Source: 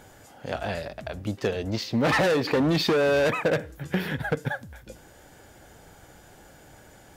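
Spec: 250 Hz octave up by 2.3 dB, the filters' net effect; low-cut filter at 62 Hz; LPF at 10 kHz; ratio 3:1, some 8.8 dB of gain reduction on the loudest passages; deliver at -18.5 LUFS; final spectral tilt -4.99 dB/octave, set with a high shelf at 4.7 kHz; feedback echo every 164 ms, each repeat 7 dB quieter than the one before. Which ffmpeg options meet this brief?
-af "highpass=62,lowpass=10000,equalizer=f=250:t=o:g=3,highshelf=f=4700:g=-8.5,acompressor=threshold=0.0316:ratio=3,aecho=1:1:164|328|492|656|820:0.447|0.201|0.0905|0.0407|0.0183,volume=4.47"

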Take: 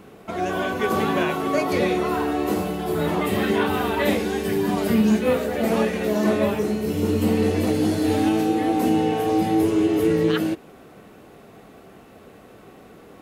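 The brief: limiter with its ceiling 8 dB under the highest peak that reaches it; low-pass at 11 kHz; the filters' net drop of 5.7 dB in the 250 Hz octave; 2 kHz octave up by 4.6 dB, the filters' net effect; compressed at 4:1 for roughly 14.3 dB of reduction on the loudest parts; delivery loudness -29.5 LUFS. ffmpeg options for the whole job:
-af "lowpass=11000,equalizer=f=250:t=o:g=-8,equalizer=f=2000:t=o:g=6,acompressor=threshold=0.0158:ratio=4,volume=3.55,alimiter=limit=0.1:level=0:latency=1"

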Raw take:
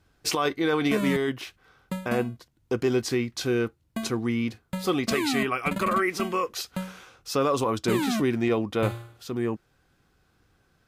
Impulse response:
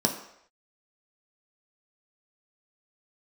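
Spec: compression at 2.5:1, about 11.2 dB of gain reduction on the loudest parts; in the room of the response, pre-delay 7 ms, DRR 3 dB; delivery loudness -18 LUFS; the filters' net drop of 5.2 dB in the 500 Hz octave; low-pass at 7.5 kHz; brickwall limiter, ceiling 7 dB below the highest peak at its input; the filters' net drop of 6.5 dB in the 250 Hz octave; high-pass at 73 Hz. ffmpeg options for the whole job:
-filter_complex "[0:a]highpass=73,lowpass=7500,equalizer=f=250:t=o:g=-7,equalizer=f=500:t=o:g=-4,acompressor=threshold=0.00891:ratio=2.5,alimiter=level_in=2.24:limit=0.0631:level=0:latency=1,volume=0.447,asplit=2[s0][s1];[1:a]atrim=start_sample=2205,adelay=7[s2];[s1][s2]afir=irnorm=-1:irlink=0,volume=0.211[s3];[s0][s3]amix=inputs=2:normalize=0,volume=11.2"

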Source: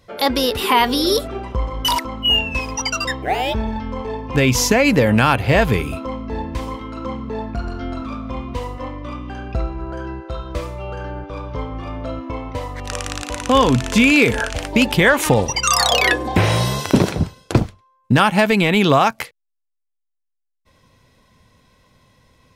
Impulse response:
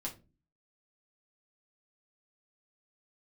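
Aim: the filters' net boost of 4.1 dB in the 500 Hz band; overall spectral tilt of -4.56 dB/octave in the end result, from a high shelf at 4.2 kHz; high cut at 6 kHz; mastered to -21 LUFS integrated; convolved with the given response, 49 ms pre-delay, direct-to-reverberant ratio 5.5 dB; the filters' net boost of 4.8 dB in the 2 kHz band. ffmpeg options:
-filter_complex "[0:a]lowpass=6000,equalizer=f=500:t=o:g=4.5,equalizer=f=2000:t=o:g=5,highshelf=f=4200:g=3.5,asplit=2[s0][s1];[1:a]atrim=start_sample=2205,adelay=49[s2];[s1][s2]afir=irnorm=-1:irlink=0,volume=0.531[s3];[s0][s3]amix=inputs=2:normalize=0,volume=0.473"

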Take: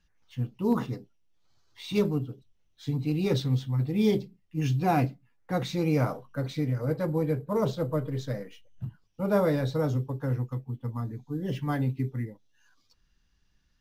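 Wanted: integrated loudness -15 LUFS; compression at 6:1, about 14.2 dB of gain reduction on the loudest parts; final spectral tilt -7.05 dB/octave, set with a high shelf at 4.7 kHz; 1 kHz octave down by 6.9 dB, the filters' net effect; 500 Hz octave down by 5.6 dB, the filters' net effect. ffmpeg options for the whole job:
-af "equalizer=f=500:t=o:g=-5,equalizer=f=1000:t=o:g=-7.5,highshelf=f=4700:g=-4.5,acompressor=threshold=0.0126:ratio=6,volume=23.7"

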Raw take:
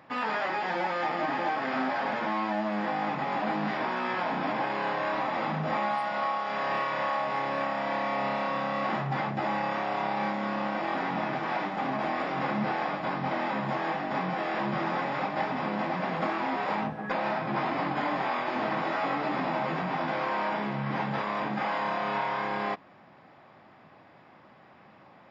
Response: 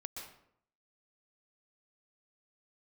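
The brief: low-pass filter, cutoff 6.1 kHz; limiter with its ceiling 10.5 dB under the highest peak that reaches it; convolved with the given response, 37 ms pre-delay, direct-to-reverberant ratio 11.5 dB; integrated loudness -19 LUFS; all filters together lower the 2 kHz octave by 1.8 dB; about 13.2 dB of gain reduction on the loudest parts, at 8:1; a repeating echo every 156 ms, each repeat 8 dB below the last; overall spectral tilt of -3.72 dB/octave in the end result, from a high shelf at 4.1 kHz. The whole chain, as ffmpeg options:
-filter_complex "[0:a]lowpass=6100,equalizer=f=2000:t=o:g=-3.5,highshelf=f=4100:g=6.5,acompressor=threshold=0.01:ratio=8,alimiter=level_in=5.62:limit=0.0631:level=0:latency=1,volume=0.178,aecho=1:1:156|312|468|624|780:0.398|0.159|0.0637|0.0255|0.0102,asplit=2[s0][s1];[1:a]atrim=start_sample=2205,adelay=37[s2];[s1][s2]afir=irnorm=-1:irlink=0,volume=0.335[s3];[s0][s3]amix=inputs=2:normalize=0,volume=23.7"

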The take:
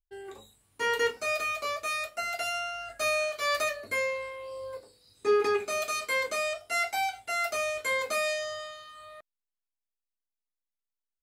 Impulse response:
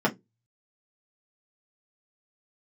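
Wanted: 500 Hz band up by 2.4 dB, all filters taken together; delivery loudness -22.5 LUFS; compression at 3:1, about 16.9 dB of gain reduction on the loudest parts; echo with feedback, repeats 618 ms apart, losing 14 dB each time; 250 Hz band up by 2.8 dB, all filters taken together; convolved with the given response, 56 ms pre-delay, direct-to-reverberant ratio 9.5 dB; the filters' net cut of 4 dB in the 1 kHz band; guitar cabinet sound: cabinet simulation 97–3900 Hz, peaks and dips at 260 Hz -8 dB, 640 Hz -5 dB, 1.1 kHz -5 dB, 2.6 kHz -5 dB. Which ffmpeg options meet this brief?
-filter_complex "[0:a]equalizer=f=250:t=o:g=3.5,equalizer=f=500:t=o:g=5.5,equalizer=f=1000:t=o:g=-3.5,acompressor=threshold=0.01:ratio=3,aecho=1:1:618|1236:0.2|0.0399,asplit=2[s0][s1];[1:a]atrim=start_sample=2205,adelay=56[s2];[s1][s2]afir=irnorm=-1:irlink=0,volume=0.0708[s3];[s0][s3]amix=inputs=2:normalize=0,highpass=97,equalizer=f=260:t=q:w=4:g=-8,equalizer=f=640:t=q:w=4:g=-5,equalizer=f=1100:t=q:w=4:g=-5,equalizer=f=2600:t=q:w=4:g=-5,lowpass=f=3900:w=0.5412,lowpass=f=3900:w=1.3066,volume=8.41"

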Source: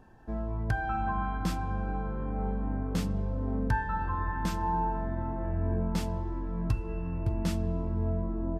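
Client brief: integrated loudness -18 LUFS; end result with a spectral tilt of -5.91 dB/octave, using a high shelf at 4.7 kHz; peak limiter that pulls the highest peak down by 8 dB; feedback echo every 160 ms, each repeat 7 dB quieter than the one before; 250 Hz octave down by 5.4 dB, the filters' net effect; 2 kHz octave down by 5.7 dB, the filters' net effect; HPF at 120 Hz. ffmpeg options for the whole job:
-af "highpass=120,equalizer=f=250:t=o:g=-7,equalizer=f=2000:t=o:g=-9,highshelf=f=4700:g=7.5,alimiter=level_in=1.58:limit=0.0631:level=0:latency=1,volume=0.631,aecho=1:1:160|320|480|640|800:0.447|0.201|0.0905|0.0407|0.0183,volume=9.44"

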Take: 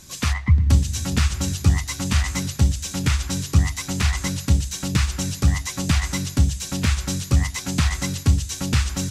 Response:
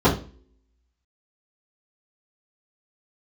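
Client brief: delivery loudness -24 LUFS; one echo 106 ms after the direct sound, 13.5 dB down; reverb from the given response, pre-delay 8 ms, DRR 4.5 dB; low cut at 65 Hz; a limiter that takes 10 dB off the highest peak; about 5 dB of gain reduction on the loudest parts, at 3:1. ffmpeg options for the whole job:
-filter_complex "[0:a]highpass=65,acompressor=threshold=0.112:ratio=3,alimiter=limit=0.112:level=0:latency=1,aecho=1:1:106:0.211,asplit=2[s0][s1];[1:a]atrim=start_sample=2205,adelay=8[s2];[s1][s2]afir=irnorm=-1:irlink=0,volume=0.0531[s3];[s0][s3]amix=inputs=2:normalize=0,volume=0.944"

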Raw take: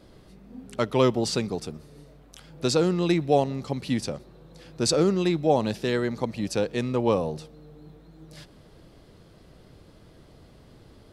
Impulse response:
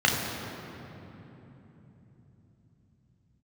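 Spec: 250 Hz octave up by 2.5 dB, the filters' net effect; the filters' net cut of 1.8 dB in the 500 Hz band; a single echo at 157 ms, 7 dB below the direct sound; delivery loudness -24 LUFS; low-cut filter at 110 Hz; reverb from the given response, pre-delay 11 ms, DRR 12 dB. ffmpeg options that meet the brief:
-filter_complex "[0:a]highpass=110,equalizer=f=250:t=o:g=5,equalizer=f=500:t=o:g=-4,aecho=1:1:157:0.447,asplit=2[s0][s1];[1:a]atrim=start_sample=2205,adelay=11[s2];[s1][s2]afir=irnorm=-1:irlink=0,volume=0.0376[s3];[s0][s3]amix=inputs=2:normalize=0"

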